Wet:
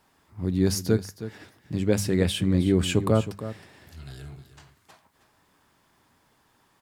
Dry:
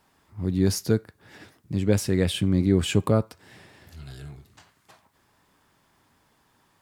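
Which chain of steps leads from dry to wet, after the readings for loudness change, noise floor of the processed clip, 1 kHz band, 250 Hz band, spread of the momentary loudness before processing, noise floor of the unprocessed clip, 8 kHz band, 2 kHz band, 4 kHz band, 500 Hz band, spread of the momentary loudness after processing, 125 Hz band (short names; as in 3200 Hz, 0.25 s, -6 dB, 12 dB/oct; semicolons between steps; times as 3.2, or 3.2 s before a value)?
-1.0 dB, -66 dBFS, 0.0 dB, -0.5 dB, 20 LU, -66 dBFS, 0.0 dB, 0.0 dB, 0.0 dB, 0.0 dB, 20 LU, -1.0 dB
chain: notches 50/100/150/200 Hz; echo 0.317 s -13 dB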